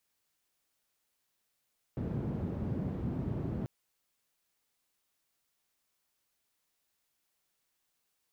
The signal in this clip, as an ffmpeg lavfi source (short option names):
-f lavfi -i "anoisesrc=c=white:d=1.69:r=44100:seed=1,highpass=f=91,lowpass=f=170,volume=-6.6dB"